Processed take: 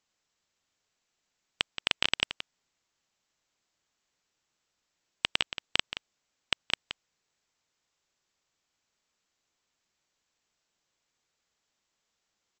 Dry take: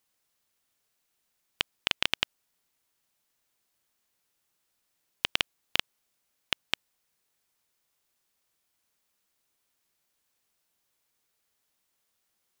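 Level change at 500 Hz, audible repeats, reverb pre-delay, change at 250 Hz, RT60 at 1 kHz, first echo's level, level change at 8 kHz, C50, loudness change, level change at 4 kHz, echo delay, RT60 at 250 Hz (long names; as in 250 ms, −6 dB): +0.5 dB, 1, no reverb audible, +0.5 dB, no reverb audible, −11.0 dB, −0.5 dB, no reverb audible, +0.5 dB, +0.5 dB, 174 ms, no reverb audible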